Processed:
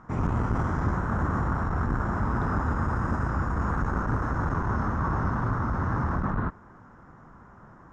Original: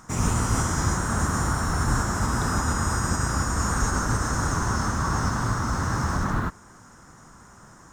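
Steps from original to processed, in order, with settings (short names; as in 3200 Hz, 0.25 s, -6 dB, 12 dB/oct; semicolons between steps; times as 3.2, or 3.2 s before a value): LPF 1500 Hz 12 dB/oct; core saturation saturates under 180 Hz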